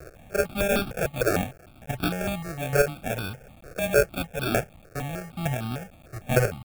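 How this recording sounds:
a quantiser's noise floor 8 bits, dither triangular
chopped level 1.1 Hz, depth 60%, duty 10%
aliases and images of a low sample rate 1,000 Hz, jitter 0%
notches that jump at a steady rate 6.6 Hz 890–1,900 Hz

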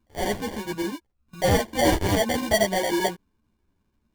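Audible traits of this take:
chopped level 12 Hz, depth 65%, duty 85%
aliases and images of a low sample rate 1,300 Hz, jitter 0%
a shimmering, thickened sound

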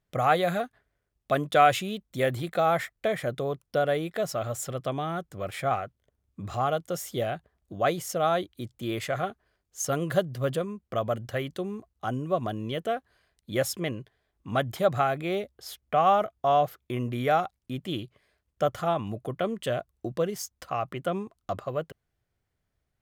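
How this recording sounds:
background noise floor −80 dBFS
spectral slope −5.0 dB per octave

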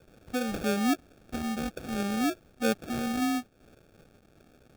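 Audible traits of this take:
a quantiser's noise floor 10 bits, dither triangular
phaser sweep stages 2, 0.5 Hz, lowest notch 430–1,300 Hz
aliases and images of a low sample rate 1,000 Hz, jitter 0%
amplitude modulation by smooth noise

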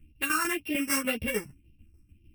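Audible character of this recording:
a buzz of ramps at a fixed pitch in blocks of 16 samples
phaser sweep stages 4, 1.9 Hz, lowest notch 550–1,200 Hz
tremolo saw down 6.7 Hz, depth 70%
a shimmering, thickened sound

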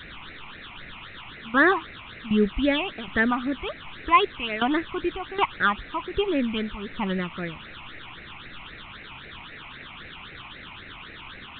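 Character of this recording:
tremolo saw down 1.3 Hz, depth 85%
a quantiser's noise floor 6 bits, dither triangular
phaser sweep stages 8, 3.8 Hz, lowest notch 480–1,000 Hz
mu-law

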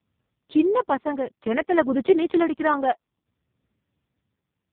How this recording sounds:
tremolo triangle 0.61 Hz, depth 60%
AMR narrowband

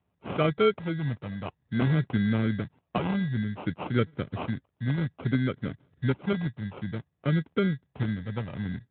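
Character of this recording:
phaser sweep stages 2, 0.57 Hz, lowest notch 380–1,100 Hz
aliases and images of a low sample rate 1,800 Hz, jitter 0%
Speex

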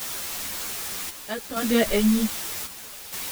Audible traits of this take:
a quantiser's noise floor 6 bits, dither triangular
chopped level 0.64 Hz, depth 60%, duty 70%
a shimmering, thickened sound

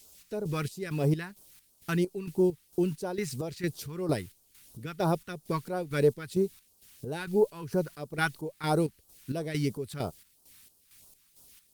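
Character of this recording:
a quantiser's noise floor 10 bits, dither triangular
chopped level 2.2 Hz, depth 65%, duty 50%
phaser sweep stages 2, 3 Hz, lowest notch 540–2,000 Hz
Opus

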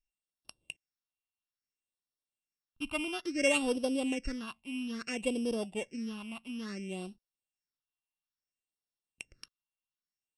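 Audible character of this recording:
a buzz of ramps at a fixed pitch in blocks of 16 samples
phaser sweep stages 6, 0.59 Hz, lowest notch 450–2,100 Hz
MP3

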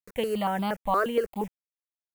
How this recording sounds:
a quantiser's noise floor 8 bits, dither none
notches that jump at a steady rate 8.5 Hz 850–1,800 Hz

